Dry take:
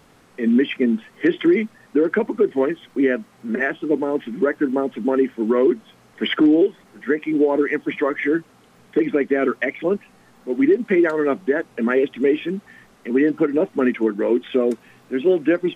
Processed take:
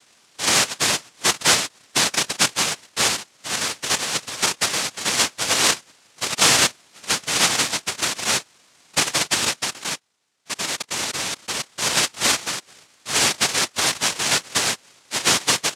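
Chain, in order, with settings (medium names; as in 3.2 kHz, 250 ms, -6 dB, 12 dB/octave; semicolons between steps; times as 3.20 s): 9.83–11.59 s: level held to a coarse grid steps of 23 dB; noise-vocoded speech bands 1; trim -2.5 dB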